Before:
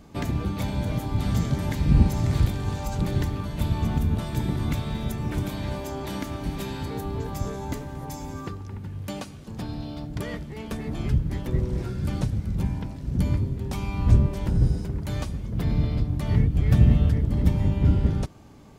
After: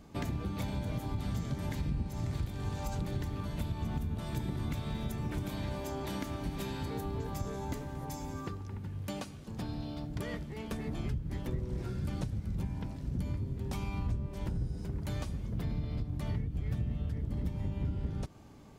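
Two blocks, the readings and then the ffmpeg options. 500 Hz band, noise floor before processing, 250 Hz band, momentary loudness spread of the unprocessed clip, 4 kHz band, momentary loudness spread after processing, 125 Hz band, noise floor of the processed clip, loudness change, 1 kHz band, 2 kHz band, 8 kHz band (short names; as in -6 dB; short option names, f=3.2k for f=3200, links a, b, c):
-8.0 dB, -39 dBFS, -10.0 dB, 14 LU, -8.0 dB, 4 LU, -11.5 dB, -45 dBFS, -11.0 dB, -7.5 dB, -8.0 dB, -7.5 dB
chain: -af "acompressor=threshold=-26dB:ratio=6,volume=-5dB"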